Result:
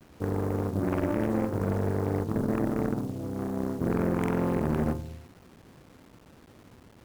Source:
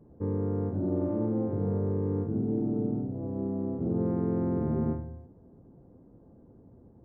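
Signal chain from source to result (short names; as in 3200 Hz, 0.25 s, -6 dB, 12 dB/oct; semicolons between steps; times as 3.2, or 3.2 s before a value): bit-crush 9-bit; added harmonics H 6 -8 dB, 8 -10 dB, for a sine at -17.5 dBFS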